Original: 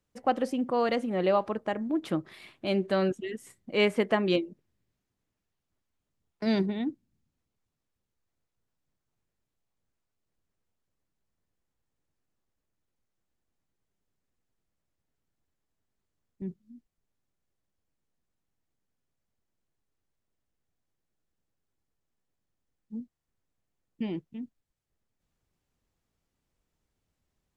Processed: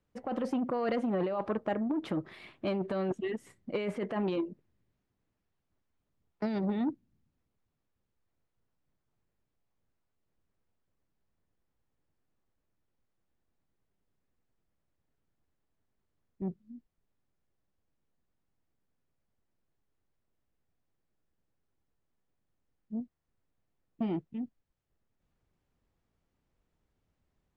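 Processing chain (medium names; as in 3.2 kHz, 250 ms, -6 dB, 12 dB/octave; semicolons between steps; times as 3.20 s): low-pass 2.1 kHz 6 dB/octave; compressor with a negative ratio -29 dBFS, ratio -1; transformer saturation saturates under 480 Hz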